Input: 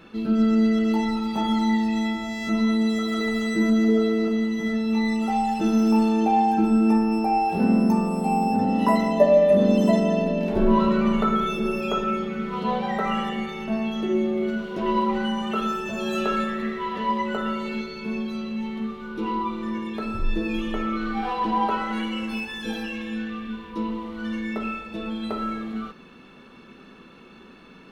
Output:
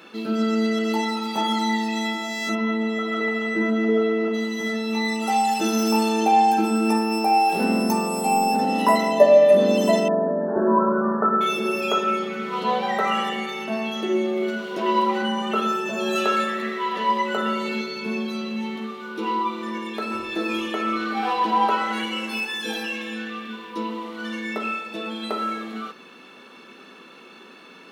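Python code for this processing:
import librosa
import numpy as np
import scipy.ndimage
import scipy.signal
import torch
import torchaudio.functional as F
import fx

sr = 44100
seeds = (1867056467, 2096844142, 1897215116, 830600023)

y = fx.savgol(x, sr, points=25, at=(2.54, 4.33), fade=0.02)
y = fx.high_shelf(y, sr, hz=4000.0, db=6.5, at=(5.27, 8.82))
y = fx.brickwall_lowpass(y, sr, high_hz=1800.0, at=(10.08, 11.41))
y = fx.tilt_eq(y, sr, slope=-1.5, at=(15.22, 16.16))
y = fx.low_shelf(y, sr, hz=200.0, db=9.5, at=(17.37, 18.76))
y = fx.echo_throw(y, sr, start_s=19.72, length_s=0.56, ms=380, feedback_pct=70, wet_db=-5.5)
y = scipy.signal.sosfilt(scipy.signal.butter(2, 320.0, 'highpass', fs=sr, output='sos'), y)
y = fx.high_shelf(y, sr, hz=3500.0, db=6.0)
y = F.gain(torch.from_numpy(y), 3.5).numpy()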